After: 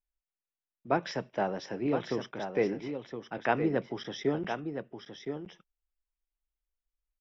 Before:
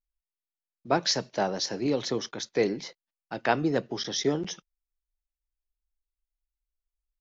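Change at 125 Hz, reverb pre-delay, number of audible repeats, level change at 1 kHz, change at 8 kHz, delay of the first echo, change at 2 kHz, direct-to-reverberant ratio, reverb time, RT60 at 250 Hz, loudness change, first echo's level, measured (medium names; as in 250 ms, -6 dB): -2.5 dB, no reverb, 1, -2.5 dB, no reading, 1016 ms, -2.5 dB, no reverb, no reverb, no reverb, -4.5 dB, -7.5 dB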